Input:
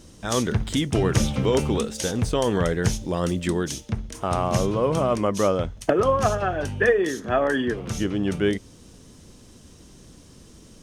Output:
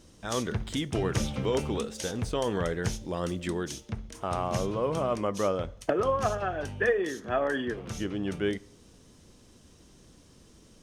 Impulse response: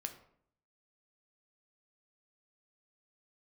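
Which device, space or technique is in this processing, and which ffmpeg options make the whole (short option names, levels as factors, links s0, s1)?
filtered reverb send: -filter_complex "[0:a]asplit=2[s0][s1];[s1]highpass=270,lowpass=6400[s2];[1:a]atrim=start_sample=2205[s3];[s2][s3]afir=irnorm=-1:irlink=0,volume=0.376[s4];[s0][s4]amix=inputs=2:normalize=0,volume=0.398"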